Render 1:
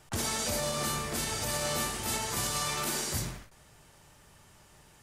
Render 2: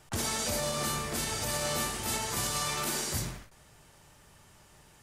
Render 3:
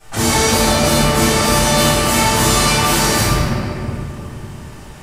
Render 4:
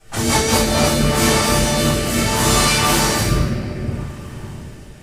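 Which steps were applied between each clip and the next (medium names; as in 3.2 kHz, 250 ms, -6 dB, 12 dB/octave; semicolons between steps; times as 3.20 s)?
no audible change
reverberation RT60 3.0 s, pre-delay 3 ms, DRR -17 dB
rotary cabinet horn 5 Hz, later 0.65 Hz, at 0.41 s; Opus 64 kbps 48 kHz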